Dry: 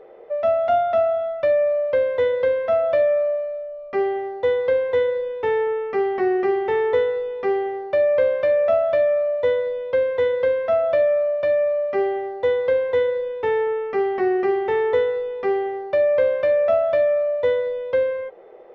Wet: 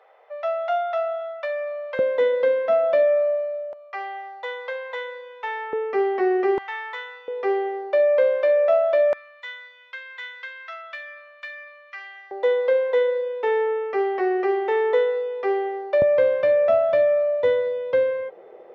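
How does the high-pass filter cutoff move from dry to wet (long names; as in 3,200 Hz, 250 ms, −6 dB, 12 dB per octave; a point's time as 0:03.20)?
high-pass filter 24 dB per octave
770 Hz
from 0:01.99 200 Hz
from 0:03.73 750 Hz
from 0:05.73 290 Hz
from 0:06.58 1,000 Hz
from 0:07.28 350 Hz
from 0:09.13 1,400 Hz
from 0:12.31 360 Hz
from 0:16.02 93 Hz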